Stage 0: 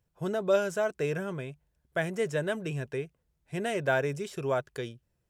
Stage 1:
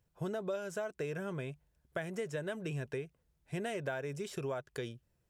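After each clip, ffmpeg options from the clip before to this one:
ffmpeg -i in.wav -af "acompressor=threshold=-35dB:ratio=6" out.wav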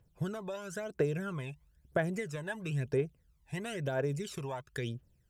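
ffmpeg -i in.wav -af "aphaser=in_gain=1:out_gain=1:delay=1.2:decay=0.69:speed=1:type=triangular" out.wav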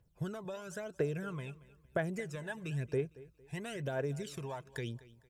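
ffmpeg -i in.wav -af "aecho=1:1:228|456|684:0.106|0.036|0.0122,volume=-3dB" out.wav

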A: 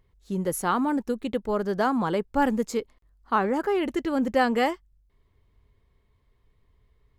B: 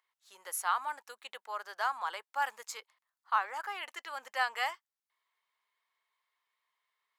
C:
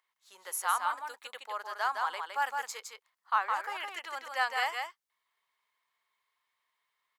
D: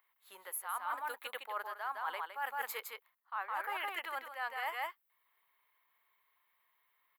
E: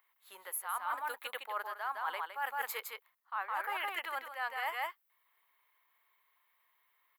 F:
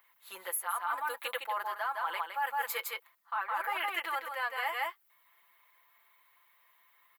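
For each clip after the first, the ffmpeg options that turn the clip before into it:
ffmpeg -i in.wav -af "highpass=frequency=890:width=0.5412,highpass=frequency=890:width=1.3066,volume=-3.5dB" out.wav
ffmpeg -i in.wav -af "aecho=1:1:162:0.596,volume=1dB" out.wav
ffmpeg -i in.wav -af "firequalizer=gain_entry='entry(2100,0);entry(3900,-6);entry(5800,-18);entry(13000,10)':delay=0.05:min_phase=1,areverse,acompressor=threshold=-38dB:ratio=16,areverse,volume=3.5dB" out.wav
ffmpeg -i in.wav -af "lowshelf=frequency=280:gain=-5,volume=2dB" out.wav
ffmpeg -i in.wav -af "aecho=1:1:5.9:0.82,acompressor=threshold=-39dB:ratio=2,volume=5.5dB" out.wav

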